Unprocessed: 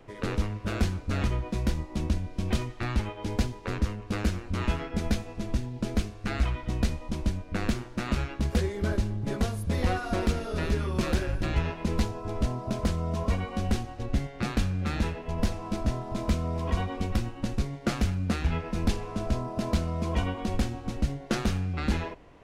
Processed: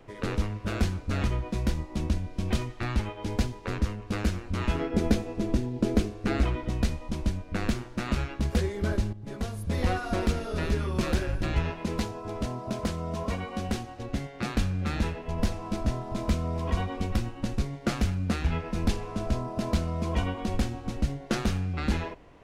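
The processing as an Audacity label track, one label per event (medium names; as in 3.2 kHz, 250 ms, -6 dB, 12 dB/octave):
4.750000	6.690000	peaking EQ 360 Hz +9.5 dB 1.5 oct
9.130000	9.820000	fade in, from -13 dB
11.790000	14.550000	bass shelf 80 Hz -11.5 dB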